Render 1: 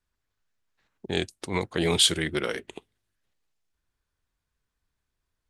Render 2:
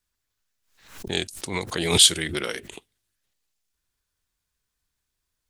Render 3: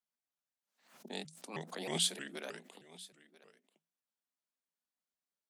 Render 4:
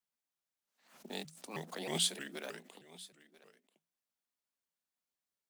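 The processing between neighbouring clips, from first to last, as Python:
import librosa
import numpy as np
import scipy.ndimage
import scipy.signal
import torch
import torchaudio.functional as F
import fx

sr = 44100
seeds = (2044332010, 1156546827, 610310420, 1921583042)

y1 = fx.high_shelf(x, sr, hz=3000.0, db=11.5)
y1 = fx.pre_swell(y1, sr, db_per_s=96.0)
y1 = F.gain(torch.from_numpy(y1), -2.5).numpy()
y2 = scipy.signal.sosfilt(scipy.signal.cheby1(6, 9, 170.0, 'highpass', fs=sr, output='sos'), y1)
y2 = y2 + 10.0 ** (-19.5 / 20.0) * np.pad(y2, (int(990 * sr / 1000.0), 0))[:len(y2)]
y2 = fx.vibrato_shape(y2, sr, shape='saw_up', rate_hz=3.2, depth_cents=250.0)
y2 = F.gain(torch.from_numpy(y2), -8.5).numpy()
y3 = fx.block_float(y2, sr, bits=5)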